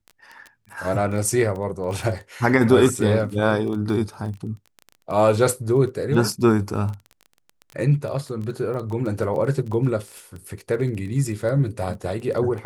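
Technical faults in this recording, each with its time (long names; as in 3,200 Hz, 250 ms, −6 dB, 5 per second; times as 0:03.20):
surface crackle 16 per second −29 dBFS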